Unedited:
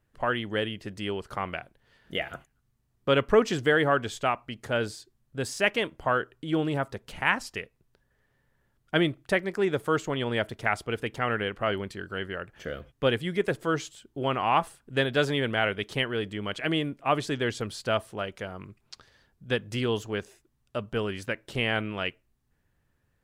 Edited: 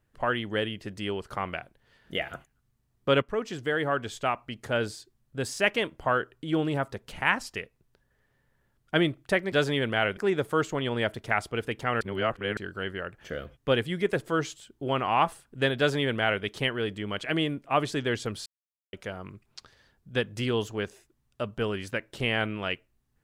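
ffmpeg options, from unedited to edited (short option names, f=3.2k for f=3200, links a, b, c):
-filter_complex "[0:a]asplit=8[a][b][c][d][e][f][g][h];[a]atrim=end=3.22,asetpts=PTS-STARTPTS,afade=t=out:st=3.216:d=0.004:c=hsin:silence=0.237137[i];[b]atrim=start=3.22:end=9.522,asetpts=PTS-STARTPTS,afade=t=in:d=1.3:silence=0.237137[j];[c]atrim=start=15.128:end=15.782[k];[d]atrim=start=9.518:end=11.362[l];[e]atrim=start=11.358:end=11.922,asetpts=PTS-STARTPTS,areverse[m];[f]atrim=start=11.918:end=17.81,asetpts=PTS-STARTPTS,afade=t=out:st=5.888:d=0.004:c=hsin[n];[g]atrim=start=17.81:end=18.28,asetpts=PTS-STARTPTS,volume=0[o];[h]atrim=start=18.28,asetpts=PTS-STARTPTS,afade=t=in:d=0.004:c=hsin[p];[i][j]concat=n=2:v=0:a=1[q];[q][k]acrossfade=d=0.004:c1=hsin:c2=hsin[r];[r][l]acrossfade=d=0.004:c1=hsin:c2=hsin[s];[s][m]acrossfade=d=0.004:c1=hsin:c2=hsin[t];[n][o][p]concat=n=3:v=0:a=1[u];[t][u]acrossfade=d=0.004:c1=hsin:c2=hsin"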